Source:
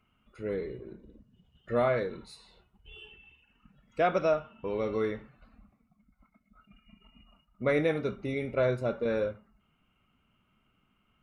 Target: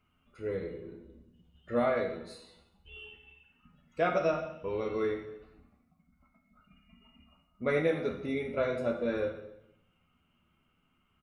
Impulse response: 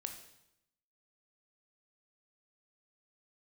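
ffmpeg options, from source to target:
-filter_complex "[0:a]asplit=2[s0][s1];[s1]adelay=12,volume=0.562[s2];[s0][s2]amix=inputs=2:normalize=0[s3];[1:a]atrim=start_sample=2205[s4];[s3][s4]afir=irnorm=-1:irlink=0"

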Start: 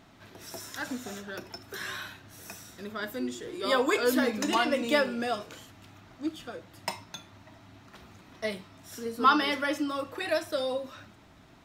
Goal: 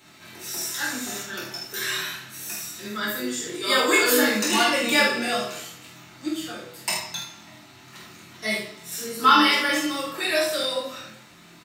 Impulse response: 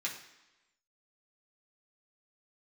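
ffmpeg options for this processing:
-filter_complex "[0:a]aecho=1:1:23|47|76:0.596|0.596|0.447[s0];[1:a]atrim=start_sample=2205,asetrate=48510,aresample=44100[s1];[s0][s1]afir=irnorm=-1:irlink=0,acrossover=split=480[s2][s3];[s3]crystalizer=i=2:c=0[s4];[s2][s4]amix=inputs=2:normalize=0,volume=1.33"

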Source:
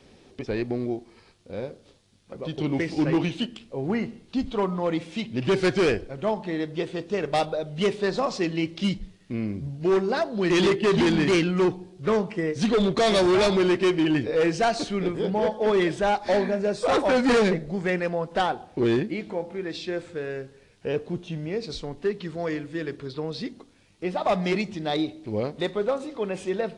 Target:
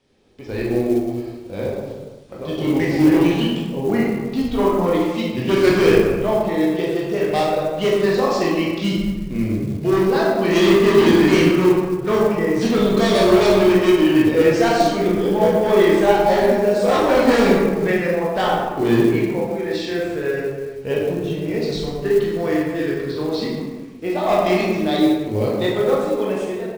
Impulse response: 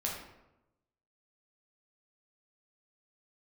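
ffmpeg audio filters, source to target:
-filter_complex "[0:a]dynaudnorm=f=110:g=9:m=6.68,aecho=1:1:67|134|201|268:0.0841|0.0463|0.0255|0.014[s0];[1:a]atrim=start_sample=2205,afade=t=out:st=0.34:d=0.01,atrim=end_sample=15435,asetrate=22050,aresample=44100[s1];[s0][s1]afir=irnorm=-1:irlink=0,acrusher=bits=7:mode=log:mix=0:aa=0.000001,volume=0.178"

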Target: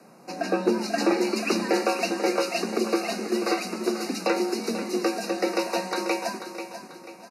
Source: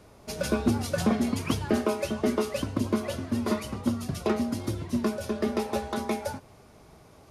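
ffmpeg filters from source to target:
-filter_complex "[0:a]acrossover=split=5000[s0][s1];[s1]acompressor=threshold=0.00141:ratio=4:attack=1:release=60[s2];[s0][s2]amix=inputs=2:normalize=0,afreqshift=120,acrossover=split=180|2400[s3][s4][s5];[s5]dynaudnorm=f=140:g=13:m=3.98[s6];[s3][s4][s6]amix=inputs=3:normalize=0,asuperstop=centerf=3300:order=12:qfactor=3.4,aecho=1:1:489|978|1467|1956:0.316|0.13|0.0532|0.0218,volume=1.19"

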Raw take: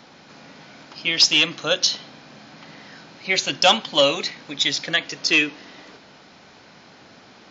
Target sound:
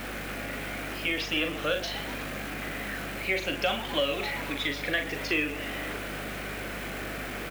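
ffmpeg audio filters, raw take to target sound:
-filter_complex "[0:a]aeval=exprs='val(0)+0.5*0.0447*sgn(val(0))':c=same,equalizer=f=920:t=o:w=0.43:g=-12,asplit=2[s0][s1];[s1]adelay=39,volume=0.473[s2];[s0][s2]amix=inputs=2:normalize=0,asplit=2[s3][s4];[s4]asplit=6[s5][s6][s7][s8][s9][s10];[s5]adelay=124,afreqshift=140,volume=0.133[s11];[s6]adelay=248,afreqshift=280,volume=0.0851[s12];[s7]adelay=372,afreqshift=420,volume=0.0543[s13];[s8]adelay=496,afreqshift=560,volume=0.0351[s14];[s9]adelay=620,afreqshift=700,volume=0.0224[s15];[s10]adelay=744,afreqshift=840,volume=0.0143[s16];[s11][s12][s13][s14][s15][s16]amix=inputs=6:normalize=0[s17];[s3][s17]amix=inputs=2:normalize=0,crystalizer=i=1.5:c=0,asplit=2[s18][s19];[s19]adynamicsmooth=sensitivity=4:basefreq=540,volume=0.531[s20];[s18][s20]amix=inputs=2:normalize=0,highshelf=f=3500:t=q:w=1.5:g=-13.5,acrossover=split=290|1300|2700[s21][s22][s23][s24];[s21]acompressor=threshold=0.0112:ratio=4[s25];[s22]acompressor=threshold=0.0891:ratio=4[s26];[s23]acompressor=threshold=0.0316:ratio=4[s27];[s24]acompressor=threshold=0.0282:ratio=4[s28];[s25][s26][s27][s28]amix=inputs=4:normalize=0,aeval=exprs='val(0)+0.0158*(sin(2*PI*50*n/s)+sin(2*PI*2*50*n/s)/2+sin(2*PI*3*50*n/s)/3+sin(2*PI*4*50*n/s)/4+sin(2*PI*5*50*n/s)/5)':c=same,acrusher=bits=7:dc=4:mix=0:aa=0.000001,volume=0.473"

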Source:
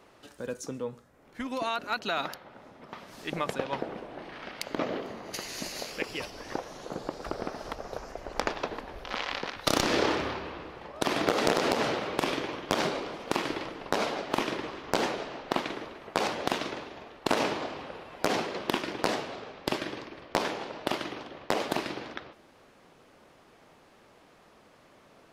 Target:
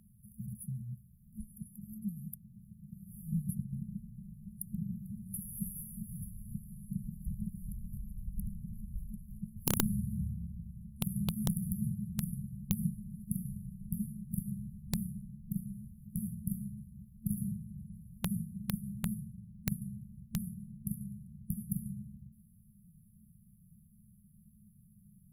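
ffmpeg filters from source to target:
-af "afftfilt=real='re*(1-between(b*sr/4096,220,9800))':imag='im*(1-between(b*sr/4096,220,9800))':win_size=4096:overlap=0.75,aeval=exprs='(mod(17.8*val(0)+1,2)-1)/17.8':c=same,volume=2.37"

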